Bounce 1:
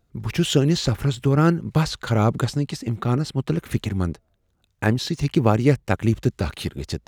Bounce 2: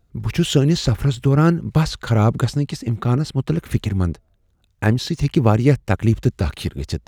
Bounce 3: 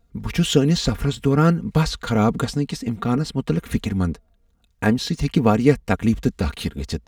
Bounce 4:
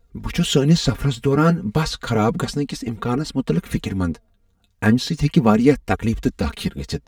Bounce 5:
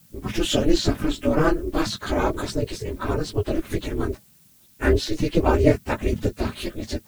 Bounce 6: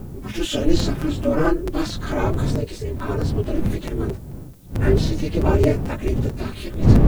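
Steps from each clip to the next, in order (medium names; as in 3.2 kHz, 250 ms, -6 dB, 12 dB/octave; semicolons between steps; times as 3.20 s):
bass shelf 100 Hz +8 dB; trim +1 dB
comb 4.3 ms, depth 60%; trim -1 dB
flange 0.33 Hz, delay 1.9 ms, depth 8.7 ms, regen +34%; trim +5 dB
phase randomisation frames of 50 ms; added noise blue -53 dBFS; ring modulator 160 Hz
wind noise 150 Hz -22 dBFS; harmonic-percussive split percussive -9 dB; crackling interface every 0.22 s, samples 256, repeat, from 0.79 s; trim +3 dB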